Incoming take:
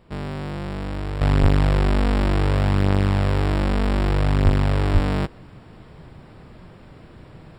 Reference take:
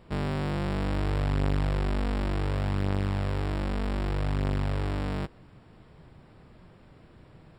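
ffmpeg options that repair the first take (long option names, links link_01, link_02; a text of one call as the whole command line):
ffmpeg -i in.wav -filter_complex "[0:a]asplit=3[link_01][link_02][link_03];[link_01]afade=type=out:start_time=1.41:duration=0.02[link_04];[link_02]highpass=frequency=140:width=0.5412,highpass=frequency=140:width=1.3066,afade=type=in:start_time=1.41:duration=0.02,afade=type=out:start_time=1.53:duration=0.02[link_05];[link_03]afade=type=in:start_time=1.53:duration=0.02[link_06];[link_04][link_05][link_06]amix=inputs=3:normalize=0,asplit=3[link_07][link_08][link_09];[link_07]afade=type=out:start_time=4.44:duration=0.02[link_10];[link_08]highpass=frequency=140:width=0.5412,highpass=frequency=140:width=1.3066,afade=type=in:start_time=4.44:duration=0.02,afade=type=out:start_time=4.56:duration=0.02[link_11];[link_09]afade=type=in:start_time=4.56:duration=0.02[link_12];[link_10][link_11][link_12]amix=inputs=3:normalize=0,asplit=3[link_13][link_14][link_15];[link_13]afade=type=out:start_time=4.93:duration=0.02[link_16];[link_14]highpass=frequency=140:width=0.5412,highpass=frequency=140:width=1.3066,afade=type=in:start_time=4.93:duration=0.02,afade=type=out:start_time=5.05:duration=0.02[link_17];[link_15]afade=type=in:start_time=5.05:duration=0.02[link_18];[link_16][link_17][link_18]amix=inputs=3:normalize=0,asetnsamples=nb_out_samples=441:pad=0,asendcmd='1.21 volume volume -9dB',volume=0dB" out.wav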